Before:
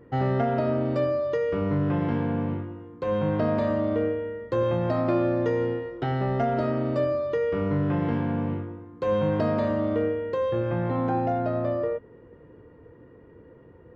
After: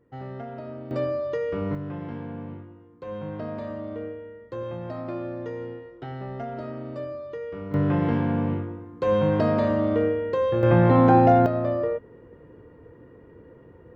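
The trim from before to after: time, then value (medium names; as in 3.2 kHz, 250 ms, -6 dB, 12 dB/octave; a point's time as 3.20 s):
-12.5 dB
from 0.91 s -2 dB
from 1.75 s -9 dB
from 7.74 s +2.5 dB
from 10.63 s +9.5 dB
from 11.46 s +1.5 dB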